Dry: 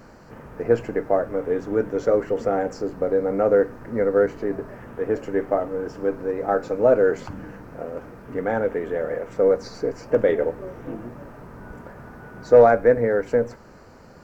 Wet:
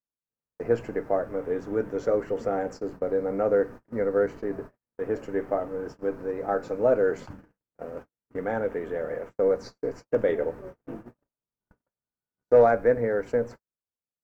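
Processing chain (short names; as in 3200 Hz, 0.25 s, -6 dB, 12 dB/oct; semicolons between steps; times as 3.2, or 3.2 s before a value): gate -33 dBFS, range -53 dB; gain -5 dB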